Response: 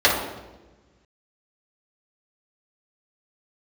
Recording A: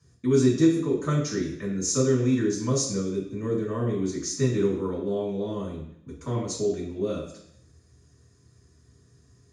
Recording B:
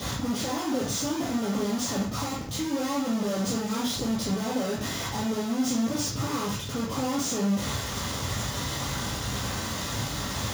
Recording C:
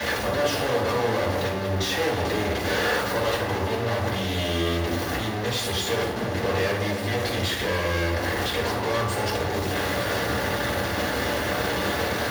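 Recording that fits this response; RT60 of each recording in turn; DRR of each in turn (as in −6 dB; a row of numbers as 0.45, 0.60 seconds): C; 0.70, 0.50, 1.2 seconds; −5.5, −5.5, −6.5 decibels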